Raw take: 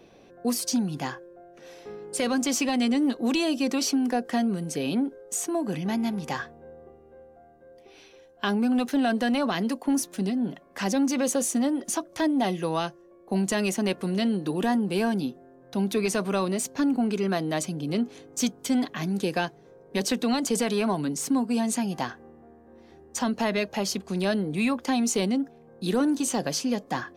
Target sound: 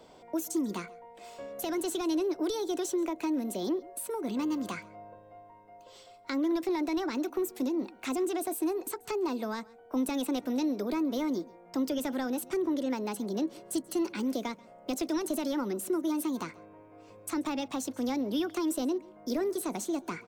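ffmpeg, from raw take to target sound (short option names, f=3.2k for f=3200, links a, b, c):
-filter_complex "[0:a]acrossover=split=240[a][b];[b]acompressor=threshold=-37dB:ratio=2.5[c];[a][c]amix=inputs=2:normalize=0,asetrate=59094,aresample=44100,asplit=2[d][e];[e]aecho=0:1:135:0.0708[f];[d][f]amix=inputs=2:normalize=0,volume=-1.5dB"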